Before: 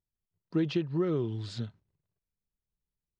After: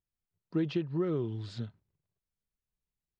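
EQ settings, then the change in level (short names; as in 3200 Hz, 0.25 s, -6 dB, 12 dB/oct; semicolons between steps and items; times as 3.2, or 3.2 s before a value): high shelf 4800 Hz -7 dB; -2.0 dB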